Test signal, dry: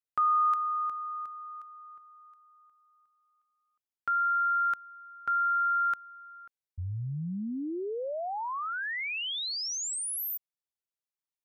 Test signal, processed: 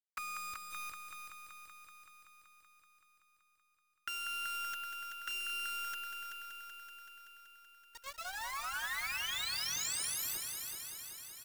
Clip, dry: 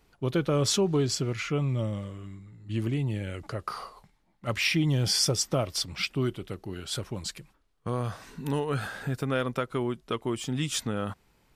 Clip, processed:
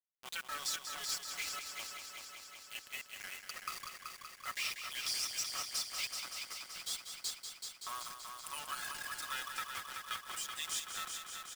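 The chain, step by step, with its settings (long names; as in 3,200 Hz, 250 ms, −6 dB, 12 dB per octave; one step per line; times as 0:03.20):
gain on one half-wave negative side −12 dB
high-pass filter 1,200 Hz 24 dB per octave
reverb reduction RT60 0.82 s
low-pass filter 10,000 Hz 12 dB per octave
noise reduction from a noise print of the clip's start 10 dB
high-shelf EQ 5,300 Hz +8 dB
comb filter 5.4 ms, depth 72%
downward compressor 3 to 1, threshold −46 dBFS
bit-depth reduction 8 bits, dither none
noise that follows the level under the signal 21 dB
on a send: echo machine with several playback heads 190 ms, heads first and second, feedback 70%, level −8.5 dB
on the sum: level +4 dB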